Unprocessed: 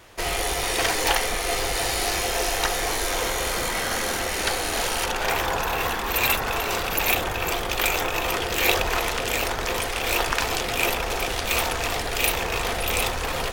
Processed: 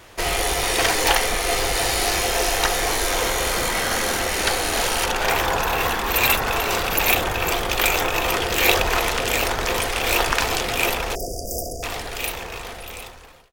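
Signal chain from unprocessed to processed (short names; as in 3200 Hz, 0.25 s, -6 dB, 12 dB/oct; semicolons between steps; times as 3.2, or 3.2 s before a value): ending faded out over 3.23 s; 11.15–11.83 brick-wall FIR band-stop 750–4700 Hz; gain +3.5 dB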